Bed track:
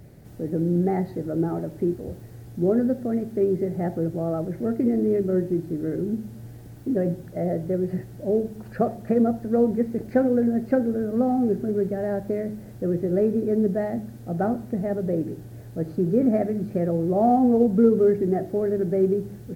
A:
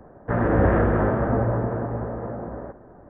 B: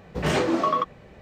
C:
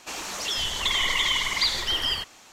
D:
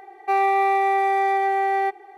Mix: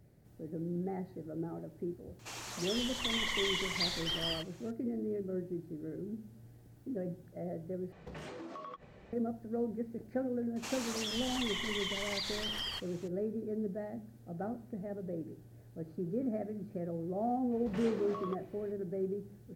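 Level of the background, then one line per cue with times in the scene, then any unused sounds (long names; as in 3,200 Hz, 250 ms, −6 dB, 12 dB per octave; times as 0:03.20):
bed track −15 dB
0:02.19: mix in C −10.5 dB
0:07.92: overwrite with B −7.5 dB + downward compressor 16 to 1, threshold −34 dBFS
0:10.56: mix in C −7.5 dB + downward compressor 5 to 1, threshold −27 dBFS
0:17.51: mix in B −11 dB + downward compressor 3 to 1, threshold −31 dBFS
not used: A, D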